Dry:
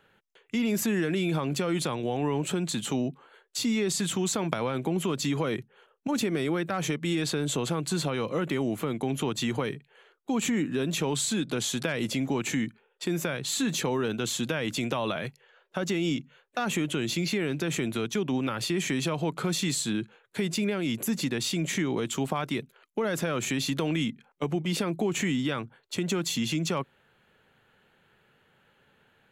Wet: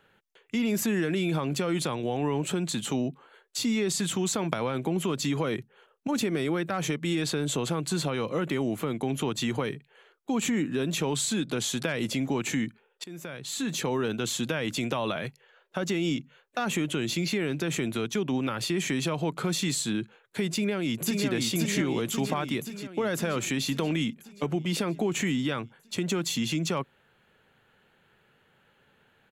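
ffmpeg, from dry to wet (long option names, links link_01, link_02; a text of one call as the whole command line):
ffmpeg -i in.wav -filter_complex "[0:a]asplit=2[link_01][link_02];[link_02]afade=type=in:start_time=20.48:duration=0.01,afade=type=out:start_time=21.28:duration=0.01,aecho=0:1:530|1060|1590|2120|2650|3180|3710|4240|4770|5300:0.707946|0.460165|0.299107|0.19442|0.126373|0.0821423|0.0533925|0.0347051|0.0225583|0.0146629[link_03];[link_01][link_03]amix=inputs=2:normalize=0,asplit=2[link_04][link_05];[link_04]atrim=end=13.04,asetpts=PTS-STARTPTS,afade=type=out:start_time=13.036:duration=0.004:curve=hsin:silence=0.141254[link_06];[link_05]atrim=start=13.04,asetpts=PTS-STARTPTS,afade=type=in:duration=0.92:silence=0.141254[link_07];[link_06][link_07]concat=n=2:v=0:a=1" out.wav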